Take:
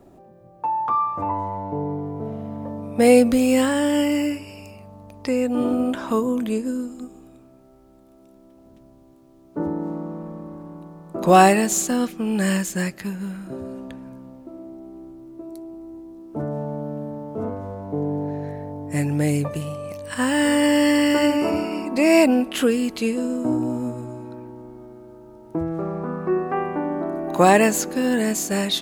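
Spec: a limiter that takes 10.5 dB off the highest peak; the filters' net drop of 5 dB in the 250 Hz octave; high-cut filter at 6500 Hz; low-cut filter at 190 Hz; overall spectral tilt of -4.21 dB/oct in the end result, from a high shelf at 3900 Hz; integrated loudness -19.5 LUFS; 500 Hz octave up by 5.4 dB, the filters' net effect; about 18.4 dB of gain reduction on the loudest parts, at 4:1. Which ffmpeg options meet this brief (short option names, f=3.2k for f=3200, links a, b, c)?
-af "highpass=190,lowpass=6.5k,equalizer=f=250:t=o:g=-7.5,equalizer=f=500:t=o:g=8,highshelf=f=3.9k:g=5,acompressor=threshold=-28dB:ratio=4,volume=13dB,alimiter=limit=-9dB:level=0:latency=1"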